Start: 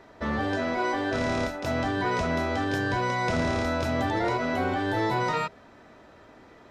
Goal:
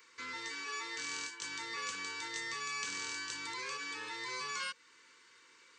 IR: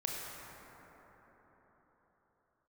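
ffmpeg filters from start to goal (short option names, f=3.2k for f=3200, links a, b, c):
-filter_complex "[0:a]aresample=16000,aresample=44100,asplit=2[a][b];[b]acompressor=threshold=-39dB:ratio=6,volume=-3dB[c];[a][c]amix=inputs=2:normalize=0,asetrate=51156,aresample=44100,asuperstop=centerf=690:order=20:qfactor=2,aderivative,volume=1dB"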